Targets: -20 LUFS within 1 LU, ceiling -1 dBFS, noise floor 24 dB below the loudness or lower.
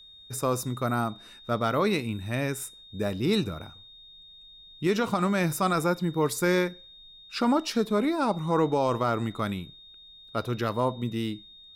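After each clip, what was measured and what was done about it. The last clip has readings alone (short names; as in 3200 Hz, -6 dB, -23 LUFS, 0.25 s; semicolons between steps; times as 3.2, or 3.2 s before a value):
steady tone 3700 Hz; tone level -48 dBFS; loudness -28.0 LUFS; peak -14.0 dBFS; loudness target -20.0 LUFS
-> notch 3700 Hz, Q 30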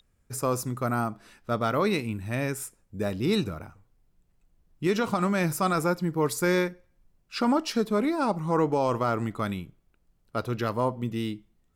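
steady tone none; loudness -28.0 LUFS; peak -14.5 dBFS; loudness target -20.0 LUFS
-> gain +8 dB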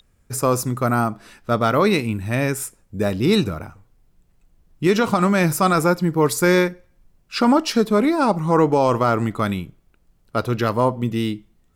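loudness -20.0 LUFS; peak -6.5 dBFS; noise floor -60 dBFS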